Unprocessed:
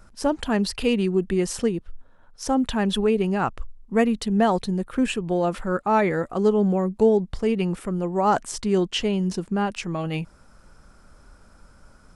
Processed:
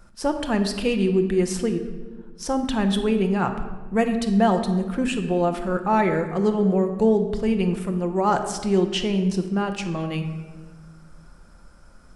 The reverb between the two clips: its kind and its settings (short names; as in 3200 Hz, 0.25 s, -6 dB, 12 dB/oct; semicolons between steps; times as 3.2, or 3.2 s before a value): shoebox room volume 1100 m³, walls mixed, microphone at 0.86 m; gain -1 dB